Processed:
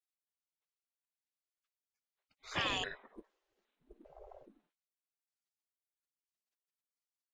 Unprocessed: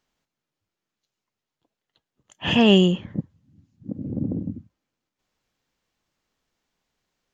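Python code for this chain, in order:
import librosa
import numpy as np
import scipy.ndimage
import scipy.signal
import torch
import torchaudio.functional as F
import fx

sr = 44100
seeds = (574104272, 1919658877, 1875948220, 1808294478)

y = fx.pitch_trill(x, sr, semitones=-10.0, every_ms=405)
y = fx.spec_gate(y, sr, threshold_db=-25, keep='weak')
y = fx.high_shelf(y, sr, hz=5400.0, db=-10.0)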